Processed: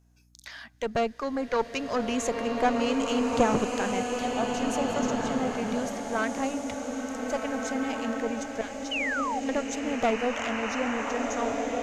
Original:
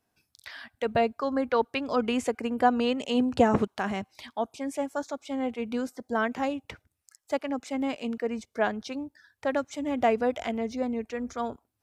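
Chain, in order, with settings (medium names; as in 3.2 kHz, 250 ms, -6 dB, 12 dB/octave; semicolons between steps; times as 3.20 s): single-diode clipper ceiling -25 dBFS; peaking EQ 6.5 kHz +12.5 dB 0.33 oct; hum 60 Hz, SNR 31 dB; 8.61–9.49 s: amplifier tone stack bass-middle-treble 5-5-5; 8.91–9.40 s: painted sound fall 720–3100 Hz -30 dBFS; swelling reverb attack 1810 ms, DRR 0.5 dB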